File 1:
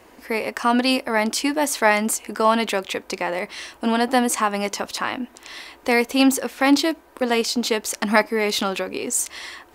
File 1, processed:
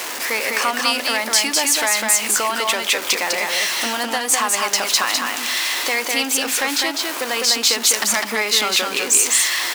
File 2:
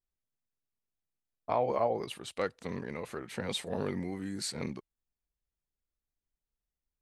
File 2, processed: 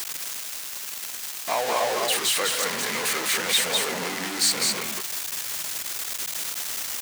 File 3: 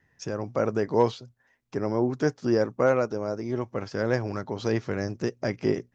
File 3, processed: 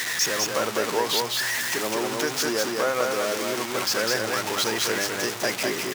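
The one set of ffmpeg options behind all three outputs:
-filter_complex "[0:a]aeval=exprs='val(0)+0.5*0.0422*sgn(val(0))':c=same,highpass=150,acompressor=threshold=0.1:ratio=6,equalizer=f=6400:t=o:w=0.77:g=2,asoftclip=type=hard:threshold=0.2,tiltshelf=f=640:g=-8.5,bandreject=f=50:t=h:w=6,bandreject=f=100:t=h:w=6,bandreject=f=150:t=h:w=6,bandreject=f=200:t=h:w=6,bandreject=f=250:t=h:w=6,asplit=2[s0][s1];[s1]aecho=0:1:203:0.708[s2];[s0][s2]amix=inputs=2:normalize=0"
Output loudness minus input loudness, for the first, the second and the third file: +4.0 LU, +10.5 LU, +3.5 LU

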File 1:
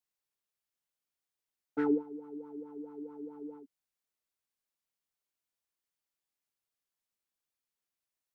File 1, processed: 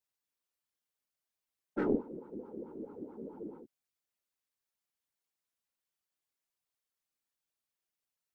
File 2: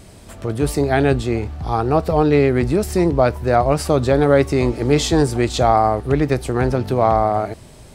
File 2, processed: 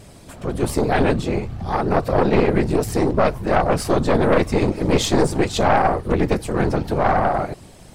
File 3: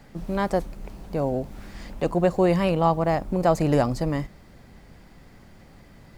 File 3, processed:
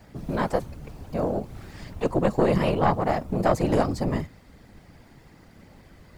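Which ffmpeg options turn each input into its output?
-af "afftfilt=real='hypot(re,im)*cos(2*PI*random(0))':imag='hypot(re,im)*sin(2*PI*random(1))':win_size=512:overlap=0.75,aeval=exprs='0.473*(cos(1*acos(clip(val(0)/0.473,-1,1)))-cos(1*PI/2))+0.15*(cos(4*acos(clip(val(0)/0.473,-1,1)))-cos(4*PI/2))+0.075*(cos(5*acos(clip(val(0)/0.473,-1,1)))-cos(5*PI/2))':c=same"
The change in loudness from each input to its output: -2.0 LU, -2.0 LU, -1.5 LU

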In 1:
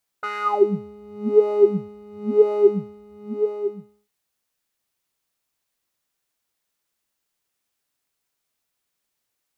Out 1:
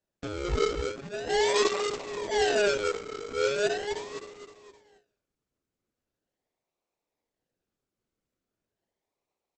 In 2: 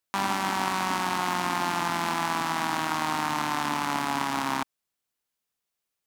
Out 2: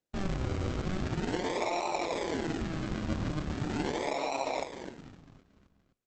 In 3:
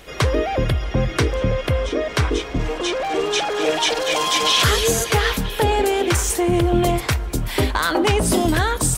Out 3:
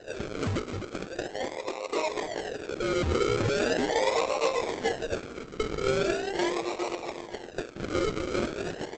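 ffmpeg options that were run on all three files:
-filter_complex "[0:a]aemphasis=mode=reproduction:type=bsi,asplit=2[s0][s1];[s1]acompressor=threshold=0.126:ratio=12,volume=1.33[s2];[s0][s2]amix=inputs=2:normalize=0,asoftclip=type=tanh:threshold=0.168,asuperpass=centerf=620:order=8:qfactor=0.78,asplit=2[s3][s4];[s4]aecho=0:1:259|518|777|1036|1295:0.473|0.218|0.1|0.0461|0.0212[s5];[s3][s5]amix=inputs=2:normalize=0,acrusher=samples=39:mix=1:aa=0.000001:lfo=1:lforange=23.4:lforate=0.4,volume=0.473" -ar 48000 -c:a libopus -b:a 10k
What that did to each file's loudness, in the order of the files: -7.5 LU, -6.0 LU, -10.5 LU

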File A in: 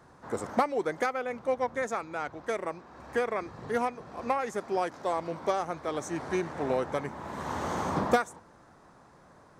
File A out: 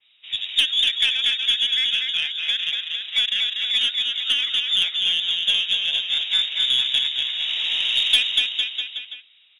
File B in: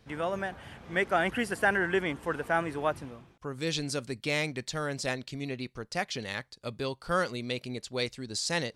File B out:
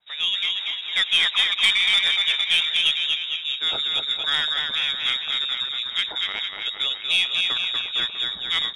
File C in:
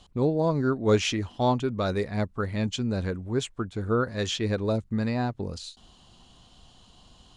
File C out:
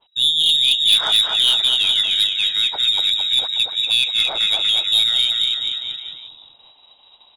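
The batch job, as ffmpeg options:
-filter_complex "[0:a]agate=range=0.447:threshold=0.00224:ratio=16:detection=peak,asplit=2[s0][s1];[s1]aecho=0:1:240|456|650.4|825.4|982.8:0.631|0.398|0.251|0.158|0.1[s2];[s0][s2]amix=inputs=2:normalize=0,lowpass=f=3300:t=q:w=0.5098,lowpass=f=3300:t=q:w=0.6013,lowpass=f=3300:t=q:w=0.9,lowpass=f=3300:t=q:w=2.563,afreqshift=-3900,aeval=exprs='0.447*(cos(1*acos(clip(val(0)/0.447,-1,1)))-cos(1*PI/2))+0.0158*(cos(4*acos(clip(val(0)/0.447,-1,1)))-cos(4*PI/2))+0.0708*(cos(5*acos(clip(val(0)/0.447,-1,1)))-cos(5*PI/2))+0.0126*(cos(6*acos(clip(val(0)/0.447,-1,1)))-cos(6*PI/2))+0.0141*(cos(8*acos(clip(val(0)/0.447,-1,1)))-cos(8*PI/2))':c=same,adynamicequalizer=threshold=0.0251:dfrequency=2500:dqfactor=0.7:tfrequency=2500:tqfactor=0.7:attack=5:release=100:ratio=0.375:range=2.5:mode=boostabove:tftype=highshelf,volume=0.891"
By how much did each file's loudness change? 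+12.5 LU, +11.0 LU, +12.5 LU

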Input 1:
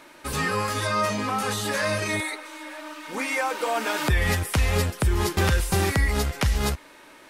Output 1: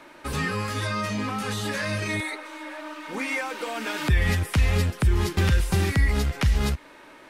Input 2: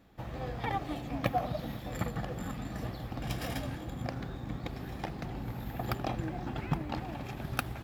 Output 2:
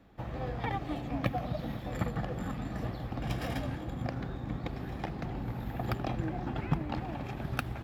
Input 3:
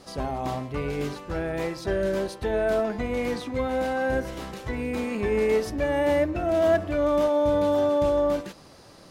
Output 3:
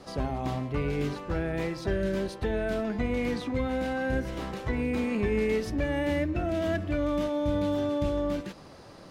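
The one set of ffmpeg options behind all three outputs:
-filter_complex "[0:a]highshelf=f=4300:g=-9.5,acrossover=split=320|1700[s0][s1][s2];[s1]acompressor=threshold=0.0158:ratio=6[s3];[s0][s3][s2]amix=inputs=3:normalize=0,volume=1.26"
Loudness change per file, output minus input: -1.0 LU, +1.0 LU, -4.0 LU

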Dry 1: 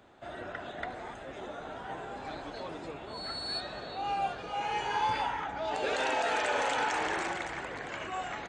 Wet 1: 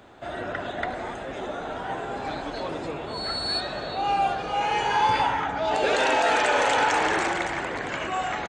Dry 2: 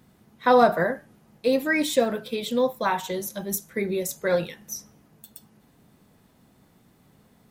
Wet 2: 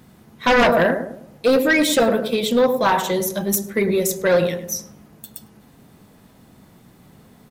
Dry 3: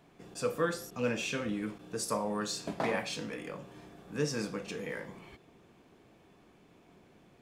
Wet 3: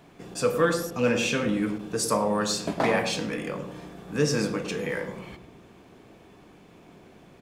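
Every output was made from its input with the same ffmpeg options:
-filter_complex "[0:a]asplit=2[s0][s1];[s1]adelay=104,lowpass=f=870:p=1,volume=0.447,asplit=2[s2][s3];[s3]adelay=104,lowpass=f=870:p=1,volume=0.46,asplit=2[s4][s5];[s5]adelay=104,lowpass=f=870:p=1,volume=0.46,asplit=2[s6][s7];[s7]adelay=104,lowpass=f=870:p=1,volume=0.46,asplit=2[s8][s9];[s9]adelay=104,lowpass=f=870:p=1,volume=0.46[s10];[s0][s2][s4][s6][s8][s10]amix=inputs=6:normalize=0,aeval=exprs='0.501*sin(PI/2*2.82*val(0)/0.501)':c=same,volume=0.596"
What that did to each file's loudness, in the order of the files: +8.5 LU, +6.0 LU, +8.5 LU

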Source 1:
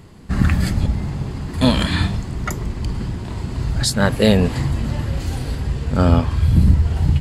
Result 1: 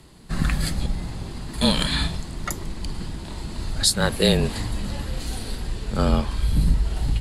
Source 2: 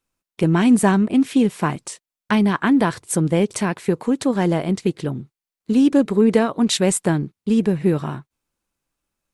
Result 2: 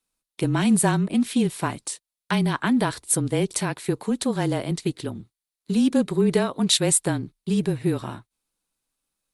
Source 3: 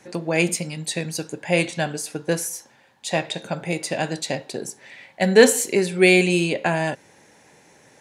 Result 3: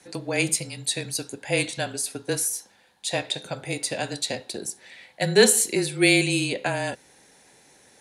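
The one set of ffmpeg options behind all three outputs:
-af "afreqshift=-27,equalizer=f=100:t=o:w=0.67:g=-7,equalizer=f=4000:t=o:w=0.67:g=7,equalizer=f=10000:t=o:w=0.67:g=10,volume=0.596"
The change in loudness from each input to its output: -5.5 LU, -4.0 LU, -3.0 LU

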